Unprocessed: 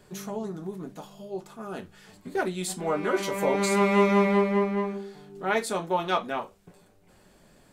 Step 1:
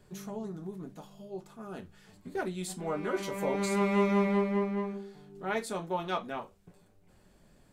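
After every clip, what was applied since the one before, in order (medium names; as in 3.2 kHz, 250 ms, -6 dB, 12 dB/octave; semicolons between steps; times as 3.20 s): bass shelf 180 Hz +8 dB; trim -7.5 dB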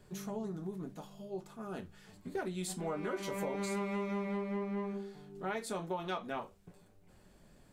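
compression 10:1, threshold -33 dBFS, peak gain reduction 12 dB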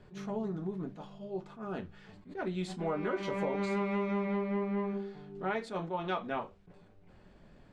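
low-pass 3.4 kHz 12 dB/octave; attacks held to a fixed rise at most 190 dB/s; trim +4 dB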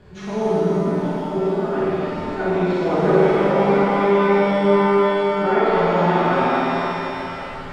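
low-pass that closes with the level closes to 1.7 kHz, closed at -30.5 dBFS; flutter echo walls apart 9 m, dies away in 0.88 s; pitch-shifted reverb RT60 3.8 s, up +7 st, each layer -8 dB, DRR -7.5 dB; trim +7 dB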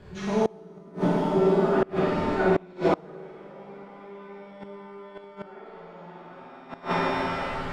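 inverted gate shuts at -11 dBFS, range -27 dB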